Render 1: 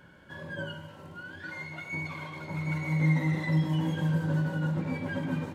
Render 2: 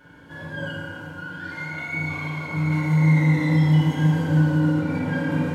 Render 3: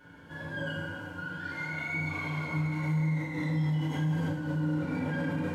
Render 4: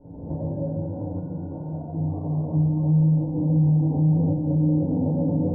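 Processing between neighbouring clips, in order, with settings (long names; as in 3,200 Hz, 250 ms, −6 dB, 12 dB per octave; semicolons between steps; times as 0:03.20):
feedback delay network reverb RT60 2.4 s, low-frequency decay 1.1×, high-frequency decay 0.65×, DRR −7 dB
brickwall limiter −20 dBFS, peak gain reduction 10.5 dB; flanger 0.91 Hz, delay 9.4 ms, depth 6.3 ms, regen −39%
camcorder AGC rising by 35 dB per second; Butterworth low-pass 780 Hz 48 dB per octave; low-shelf EQ 82 Hz +8.5 dB; level +8 dB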